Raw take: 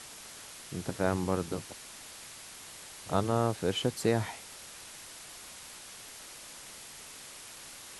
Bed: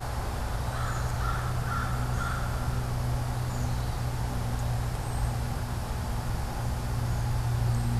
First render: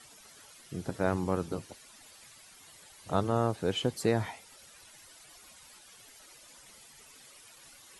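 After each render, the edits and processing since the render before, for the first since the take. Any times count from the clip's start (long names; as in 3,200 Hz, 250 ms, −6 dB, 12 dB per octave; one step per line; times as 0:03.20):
broadband denoise 12 dB, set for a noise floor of −48 dBFS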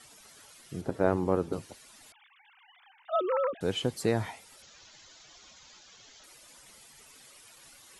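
0:00.81–0:01.53: drawn EQ curve 170 Hz 0 dB, 400 Hz +6 dB, 6,000 Hz −7 dB
0:02.12–0:03.61: three sine waves on the formant tracks
0:04.62–0:06.24: bad sample-rate conversion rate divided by 3×, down none, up filtered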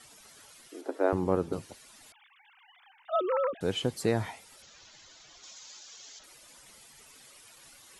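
0:00.68–0:01.13: elliptic high-pass filter 280 Hz
0:05.43–0:06.19: bass and treble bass −11 dB, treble +9 dB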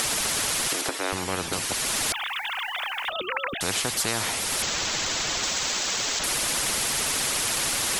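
upward compression, threshold −31 dBFS
every bin compressed towards the loudest bin 4 to 1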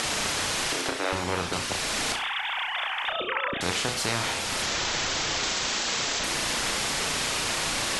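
high-frequency loss of the air 65 metres
flutter between parallel walls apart 5.8 metres, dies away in 0.37 s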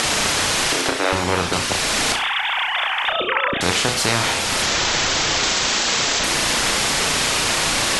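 level +8.5 dB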